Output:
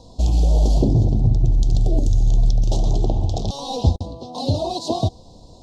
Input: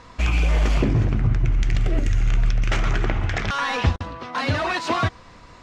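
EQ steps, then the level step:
elliptic band-stop filter 780–3,900 Hz, stop band 60 dB
+3.5 dB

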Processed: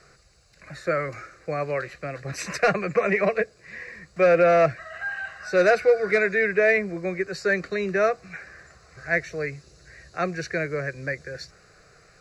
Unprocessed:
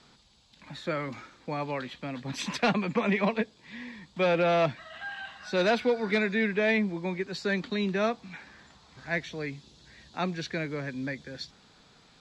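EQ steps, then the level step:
phaser with its sweep stopped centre 910 Hz, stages 6
+8.5 dB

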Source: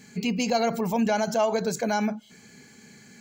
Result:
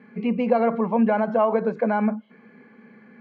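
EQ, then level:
loudspeaker in its box 210–2,200 Hz, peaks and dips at 220 Hz +8 dB, 510 Hz +9 dB, 1,100 Hz +9 dB
0.0 dB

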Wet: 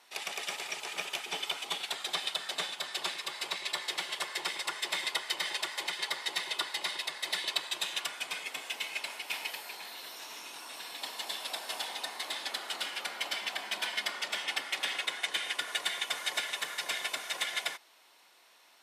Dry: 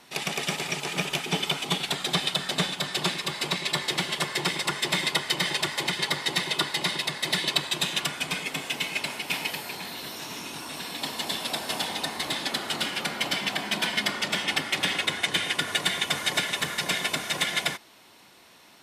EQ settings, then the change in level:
high-pass filter 550 Hz 12 dB per octave
−7.0 dB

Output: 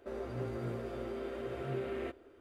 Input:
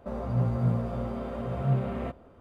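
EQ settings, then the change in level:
low shelf with overshoot 270 Hz −12.5 dB, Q 3
flat-topped bell 730 Hz −11.5 dB
0.0 dB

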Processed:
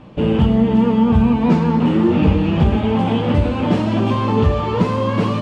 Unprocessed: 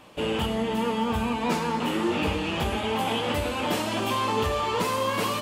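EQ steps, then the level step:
low-pass filter 5,700 Hz 12 dB per octave
spectral tilt −2.5 dB per octave
parametric band 160 Hz +8.5 dB 1.7 octaves
+3.0 dB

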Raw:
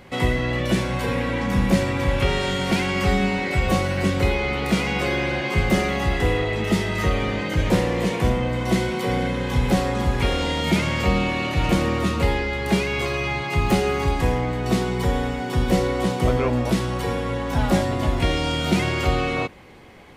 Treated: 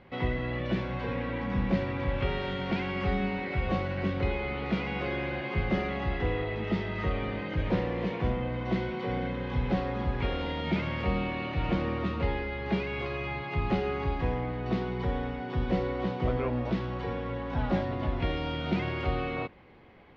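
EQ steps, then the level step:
Bessel low-pass filter 2,800 Hz, order 6
−8.5 dB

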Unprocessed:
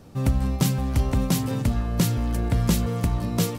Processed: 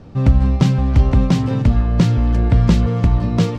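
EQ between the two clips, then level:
high-frequency loss of the air 150 metres
low-shelf EQ 140 Hz +5 dB
+6.0 dB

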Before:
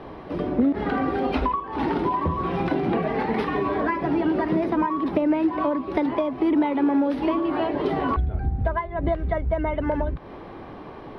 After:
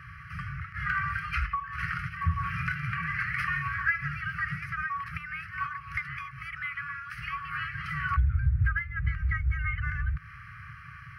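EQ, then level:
high-pass filter 84 Hz 12 dB per octave
linear-phase brick-wall band-stop 160–1,100 Hz
phaser with its sweep stopped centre 990 Hz, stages 6
+6.0 dB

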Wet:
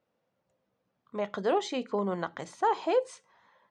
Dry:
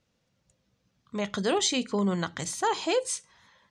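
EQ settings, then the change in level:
resonant band-pass 680 Hz, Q 0.89
+2.0 dB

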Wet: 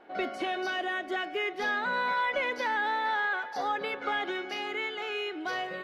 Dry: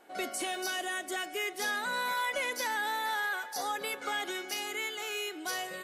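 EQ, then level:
high-frequency loss of the air 300 metres
+5.5 dB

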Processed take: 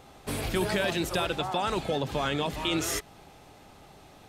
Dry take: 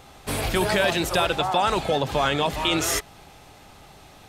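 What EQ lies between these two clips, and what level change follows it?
parametric band 330 Hz +5 dB 2.8 octaves
dynamic equaliser 690 Hz, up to −5 dB, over −31 dBFS, Q 0.78
−6.5 dB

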